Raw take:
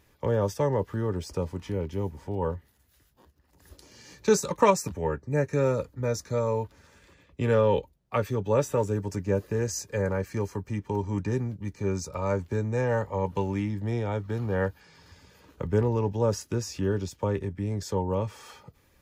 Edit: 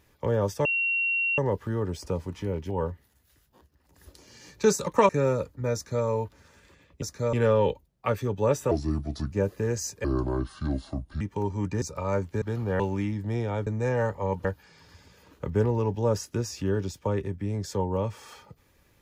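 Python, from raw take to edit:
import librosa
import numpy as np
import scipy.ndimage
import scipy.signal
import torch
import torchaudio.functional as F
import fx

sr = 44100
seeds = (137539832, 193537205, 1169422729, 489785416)

y = fx.edit(x, sr, fx.insert_tone(at_s=0.65, length_s=0.73, hz=2740.0, db=-23.0),
    fx.cut(start_s=1.97, length_s=0.37),
    fx.cut(start_s=4.73, length_s=0.75),
    fx.duplicate(start_s=6.13, length_s=0.31, to_s=7.41),
    fx.speed_span(start_s=8.79, length_s=0.44, speed=0.73),
    fx.speed_span(start_s=9.96, length_s=0.78, speed=0.67),
    fx.cut(start_s=11.35, length_s=0.64),
    fx.swap(start_s=12.59, length_s=0.78, other_s=14.24, other_length_s=0.38), tone=tone)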